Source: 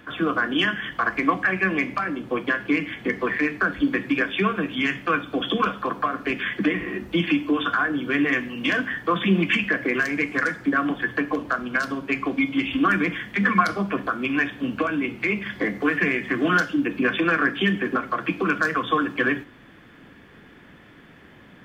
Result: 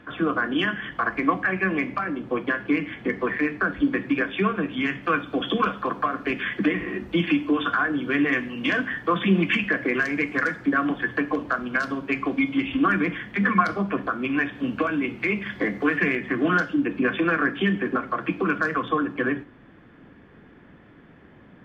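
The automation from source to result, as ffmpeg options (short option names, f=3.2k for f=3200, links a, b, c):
-af "asetnsamples=n=441:p=0,asendcmd='5.03 lowpass f 3600;12.57 lowpass f 2200;14.55 lowpass f 4000;16.15 lowpass f 1900;18.88 lowpass f 1100',lowpass=f=2k:p=1"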